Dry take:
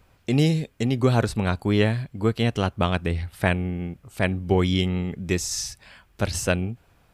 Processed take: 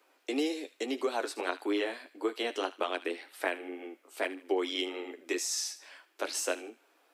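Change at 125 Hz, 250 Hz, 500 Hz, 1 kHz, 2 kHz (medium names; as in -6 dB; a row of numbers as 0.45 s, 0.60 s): under -40 dB, -12.0 dB, -7.0 dB, -7.0 dB, -7.0 dB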